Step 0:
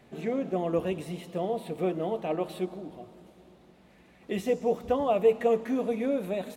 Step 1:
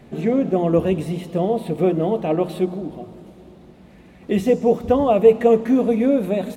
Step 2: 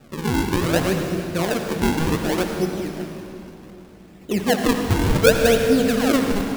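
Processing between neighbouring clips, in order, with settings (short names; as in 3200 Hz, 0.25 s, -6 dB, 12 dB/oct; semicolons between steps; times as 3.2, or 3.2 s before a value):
low shelf 360 Hz +10 dB; notches 60/120/180 Hz; gain +6 dB
decimation with a swept rate 41×, swing 160% 0.66 Hz; reverb RT60 3.1 s, pre-delay 61 ms, DRR 4 dB; gain -3 dB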